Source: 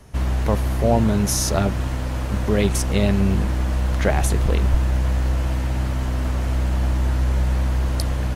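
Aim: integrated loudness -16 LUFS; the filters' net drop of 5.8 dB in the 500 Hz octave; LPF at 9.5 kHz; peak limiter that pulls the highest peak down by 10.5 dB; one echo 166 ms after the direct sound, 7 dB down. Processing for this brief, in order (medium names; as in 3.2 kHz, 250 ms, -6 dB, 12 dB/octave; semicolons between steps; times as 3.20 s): low-pass 9.5 kHz; peaking EQ 500 Hz -7.5 dB; peak limiter -16 dBFS; delay 166 ms -7 dB; trim +10.5 dB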